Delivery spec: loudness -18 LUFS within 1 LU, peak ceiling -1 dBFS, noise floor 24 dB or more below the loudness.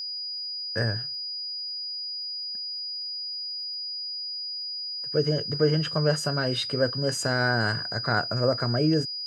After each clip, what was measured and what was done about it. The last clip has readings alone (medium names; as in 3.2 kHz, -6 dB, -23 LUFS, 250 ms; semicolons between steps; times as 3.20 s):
tick rate 37 per s; steady tone 4.9 kHz; tone level -31 dBFS; loudness -27.0 LUFS; peak level -9.5 dBFS; loudness target -18.0 LUFS
-> de-click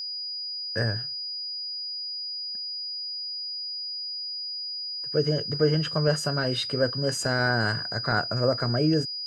tick rate 0 per s; steady tone 4.9 kHz; tone level -31 dBFS
-> band-stop 4.9 kHz, Q 30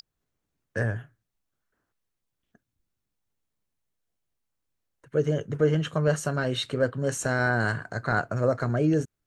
steady tone not found; loudness -26.5 LUFS; peak level -10.0 dBFS; loudness target -18.0 LUFS
-> trim +8.5 dB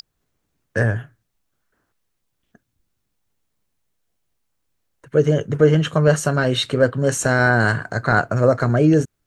loudness -18.0 LUFS; peak level -1.5 dBFS; noise floor -74 dBFS